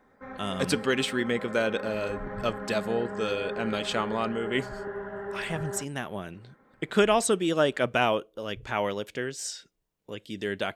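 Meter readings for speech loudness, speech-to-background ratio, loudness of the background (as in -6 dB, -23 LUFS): -29.0 LUFS, 8.5 dB, -37.5 LUFS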